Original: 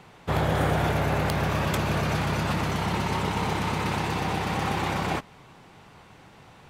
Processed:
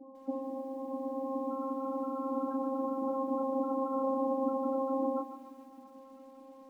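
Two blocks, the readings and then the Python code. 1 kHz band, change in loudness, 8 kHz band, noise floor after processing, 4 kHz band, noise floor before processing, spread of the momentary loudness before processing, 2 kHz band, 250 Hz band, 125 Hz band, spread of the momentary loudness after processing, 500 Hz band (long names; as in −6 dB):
−8.0 dB, −7.5 dB, below −30 dB, −54 dBFS, below −35 dB, −52 dBFS, 3 LU, below −40 dB, −3.5 dB, below −40 dB, 21 LU, −2.5 dB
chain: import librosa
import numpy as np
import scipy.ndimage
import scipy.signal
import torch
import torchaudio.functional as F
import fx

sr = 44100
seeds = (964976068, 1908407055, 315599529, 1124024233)

y = fx.rattle_buzz(x, sr, strikes_db=-27.0, level_db=-19.0)
y = fx.peak_eq(y, sr, hz=2800.0, db=8.0, octaves=0.25)
y = fx.hum_notches(y, sr, base_hz=50, count=6)
y = fx.over_compress(y, sr, threshold_db=-28.0, ratio=-0.5)
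y = fx.vocoder(y, sr, bands=4, carrier='saw', carrier_hz=267.0)
y = fx.spec_topn(y, sr, count=8)
y = fx.doubler(y, sr, ms=28.0, db=-5)
y = fx.echo_feedback(y, sr, ms=673, feedback_pct=21, wet_db=-22.0)
y = fx.echo_crushed(y, sr, ms=145, feedback_pct=55, bits=10, wet_db=-11.5)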